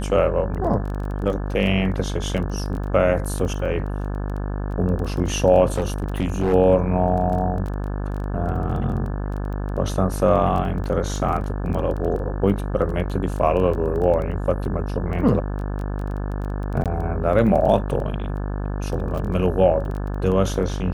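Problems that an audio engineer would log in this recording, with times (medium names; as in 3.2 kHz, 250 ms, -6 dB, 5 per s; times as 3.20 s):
buzz 50 Hz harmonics 35 -26 dBFS
crackle 14 per s -28 dBFS
5.72–6.54 s: clipped -15.5 dBFS
16.84–16.86 s: dropout 17 ms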